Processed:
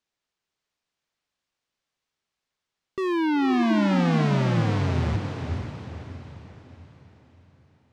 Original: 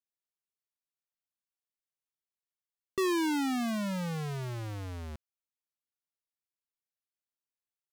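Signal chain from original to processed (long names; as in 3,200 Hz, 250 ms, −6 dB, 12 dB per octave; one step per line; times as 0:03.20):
high-shelf EQ 4,000 Hz +5.5 dB
sine wavefolder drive 10 dB, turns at −21 dBFS
high-frequency loss of the air 130 metres
feedback delay with all-pass diffusion 489 ms, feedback 45%, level −5 dB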